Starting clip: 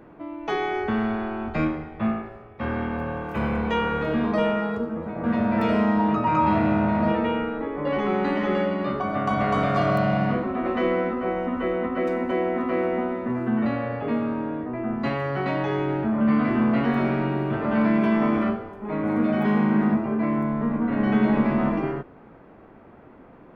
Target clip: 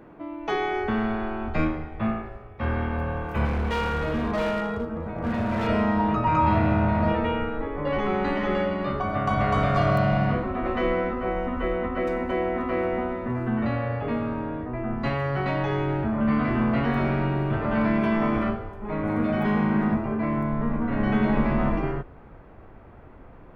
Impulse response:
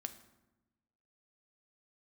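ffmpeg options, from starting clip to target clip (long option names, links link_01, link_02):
-filter_complex "[0:a]asubboost=boost=5.5:cutoff=90,asettb=1/sr,asplit=3[link_01][link_02][link_03];[link_01]atrim=end=3.454[link_04];[link_02]atrim=start=3.45:end=5.67,asetpts=PTS-STARTPTS,afade=type=in:duration=0.004:curve=qsin,afade=type=out:start_time=2.216:duration=0.004:curve=qsin,asoftclip=type=hard:threshold=-22dB[link_05];[link_03]atrim=start=5.666[link_06];[link_04][link_05]acrossfade=duration=0.004:curve1=hsin:curve2=qsin[link_07];[link_07][link_06]acrossfade=duration=0.004:curve1=qsin:curve2=hsin"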